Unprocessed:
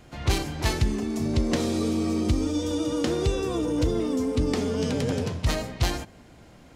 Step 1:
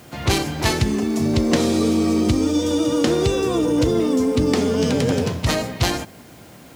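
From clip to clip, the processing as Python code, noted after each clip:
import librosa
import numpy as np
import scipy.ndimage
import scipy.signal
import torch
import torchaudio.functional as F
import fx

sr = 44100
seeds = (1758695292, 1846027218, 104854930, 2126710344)

y = scipy.signal.sosfilt(scipy.signal.butter(2, 98.0, 'highpass', fs=sr, output='sos'), x)
y = fx.quant_dither(y, sr, seeds[0], bits=10, dither='triangular')
y = y * librosa.db_to_amplitude(7.5)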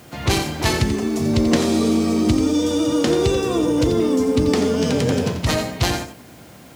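y = x + 10.0 ** (-9.5 / 20.0) * np.pad(x, (int(87 * sr / 1000.0), 0))[:len(x)]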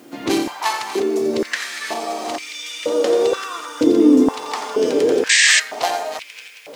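y = fx.reverse_delay_fb(x, sr, ms=648, feedback_pct=52, wet_db=-8)
y = fx.spec_paint(y, sr, seeds[1], shape='noise', start_s=5.29, length_s=0.31, low_hz=1600.0, high_hz=8600.0, level_db=-13.0)
y = fx.filter_held_highpass(y, sr, hz=2.1, low_hz=290.0, high_hz=2300.0)
y = y * librosa.db_to_amplitude(-3.5)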